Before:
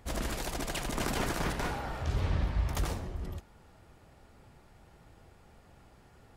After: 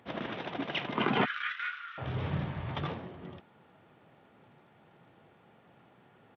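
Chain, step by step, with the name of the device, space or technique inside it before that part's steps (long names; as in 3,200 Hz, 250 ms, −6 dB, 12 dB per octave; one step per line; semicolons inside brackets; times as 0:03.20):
0:01.25–0:01.98: Butterworth high-pass 1,200 Hz 72 dB per octave
noise reduction from a noise print of the clip's start 7 dB
Bluetooth headset (high-pass filter 130 Hz 24 dB per octave; downsampling to 8,000 Hz; level +7 dB; SBC 64 kbit/s 32,000 Hz)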